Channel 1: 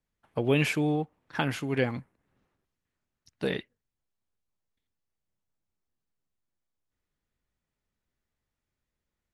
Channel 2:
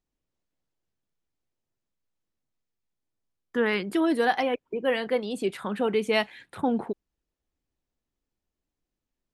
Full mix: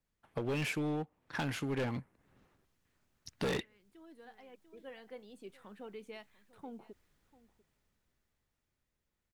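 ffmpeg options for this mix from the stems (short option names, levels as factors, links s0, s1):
-filter_complex "[0:a]dynaudnorm=f=220:g=21:m=5.62,asoftclip=type=hard:threshold=0.0708,volume=1.19,asplit=2[s0][s1];[1:a]alimiter=limit=0.168:level=0:latency=1:release=389,volume=0.1,asplit=2[s2][s3];[s3]volume=0.106[s4];[s1]apad=whole_len=411527[s5];[s2][s5]sidechaincompress=threshold=0.00891:ratio=8:attack=16:release=1120[s6];[s4]aecho=0:1:694:1[s7];[s0][s6][s7]amix=inputs=3:normalize=0,aeval=exprs='0.0891*(cos(1*acos(clip(val(0)/0.0891,-1,1)))-cos(1*PI/2))+0.00282*(cos(7*acos(clip(val(0)/0.0891,-1,1)))-cos(7*PI/2))':c=same,acompressor=threshold=0.01:ratio=2"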